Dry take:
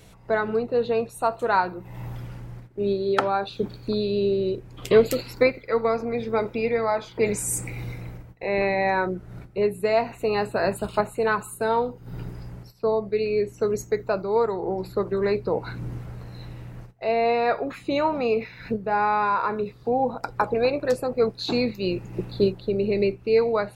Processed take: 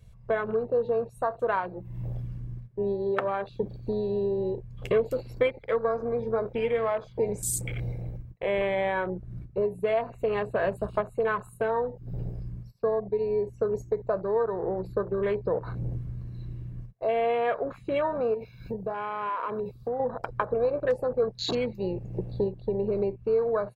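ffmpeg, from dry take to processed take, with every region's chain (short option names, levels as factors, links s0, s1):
-filter_complex "[0:a]asettb=1/sr,asplit=3[s0][s1][s2];[s0]atrim=end=18.344[s3];[s1]atrim=start=18.34:end=20,asetpts=PTS-STARTPTS,afade=t=in:d=0.004:c=qsin,afade=t=out:st=1.656:d=0.004:c=qsin,aemphasis=mode=production:type=50kf,acompressor=threshold=0.0447:ratio=5:attack=3.2:release=140:knee=1:detection=peak,asuperstop=centerf=1900:order=8:qfactor=4[s4];[s2]atrim=start=19.996[s5];[s3][s4]acrossfade=d=0.004:c1=hsin:c2=qsin[s6];[s6][s5]acrossfade=d=0.004:c1=qsin:c2=hsin,acompressor=threshold=0.0501:ratio=2.5,aecho=1:1:1.8:0.43,afwtdn=0.0158"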